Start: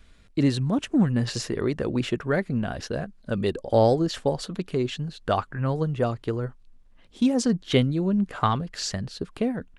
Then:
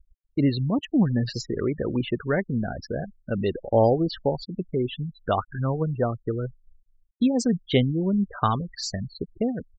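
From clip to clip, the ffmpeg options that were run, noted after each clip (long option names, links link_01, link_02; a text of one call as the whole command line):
ffmpeg -i in.wav -af "afftfilt=real='re*gte(hypot(re,im),0.0398)':imag='im*gte(hypot(re,im),0.0398)':win_size=1024:overlap=0.75" out.wav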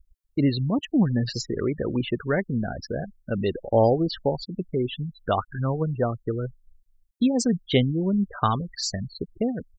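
ffmpeg -i in.wav -af "highshelf=frequency=5300:gain=6" out.wav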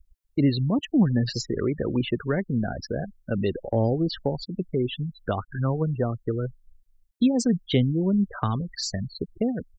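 ffmpeg -i in.wav -filter_complex "[0:a]acrossover=split=350[link_01][link_02];[link_02]acompressor=threshold=-28dB:ratio=5[link_03];[link_01][link_03]amix=inputs=2:normalize=0,volume=1dB" out.wav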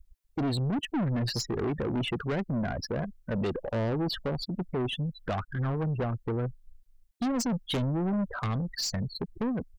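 ffmpeg -i in.wav -af "aeval=exprs='(tanh(25.1*val(0)+0.1)-tanh(0.1))/25.1':channel_layout=same,volume=2dB" out.wav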